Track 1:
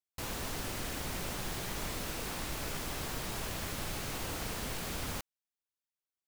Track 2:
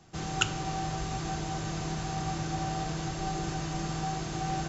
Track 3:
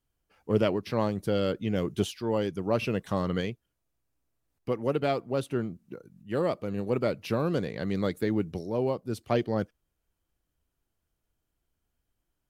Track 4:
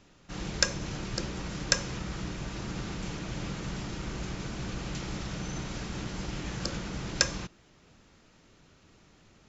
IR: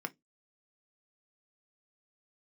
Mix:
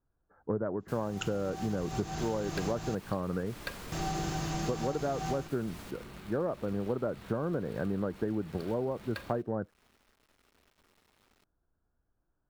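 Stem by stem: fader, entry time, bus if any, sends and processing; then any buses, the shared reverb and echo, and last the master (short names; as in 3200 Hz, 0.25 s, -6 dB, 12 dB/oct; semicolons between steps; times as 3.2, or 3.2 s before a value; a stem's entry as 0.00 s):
-4.0 dB, 0.70 s, no send, spectral gate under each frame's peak -30 dB strong; auto duck -7 dB, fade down 0.80 s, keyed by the third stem
-11.5 dB, 0.80 s, muted 2.95–3.92, no send, AGC gain up to 12 dB
+2.5 dB, 0.00 s, no send, elliptic low-pass 1600 Hz
-13.0 dB, 1.95 s, send -6 dB, Chebyshev low-pass 4600 Hz, order 8; companded quantiser 4-bit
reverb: on, RT60 0.15 s, pre-delay 3 ms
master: compressor 10:1, threshold -28 dBFS, peak gain reduction 12.5 dB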